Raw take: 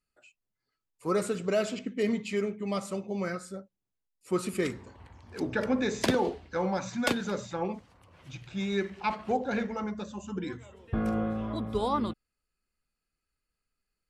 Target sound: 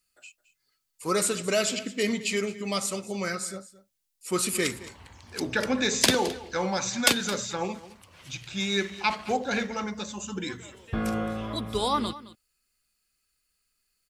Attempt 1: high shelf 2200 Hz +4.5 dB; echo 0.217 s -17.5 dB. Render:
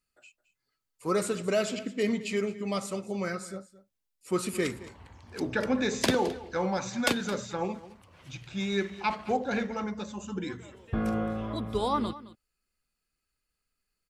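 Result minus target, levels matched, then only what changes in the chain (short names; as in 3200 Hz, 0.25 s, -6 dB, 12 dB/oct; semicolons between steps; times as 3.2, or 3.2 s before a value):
4000 Hz band -5.5 dB
change: high shelf 2200 Hz +16 dB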